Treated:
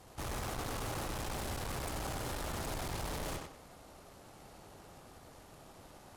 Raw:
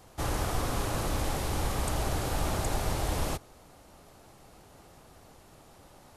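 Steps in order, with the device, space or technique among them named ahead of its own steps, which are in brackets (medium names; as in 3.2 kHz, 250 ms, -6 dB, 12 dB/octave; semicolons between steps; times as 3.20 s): rockabilly slapback (valve stage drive 40 dB, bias 0.7; tape echo 97 ms, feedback 33%, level -3 dB, low-pass 5.9 kHz); trim +2 dB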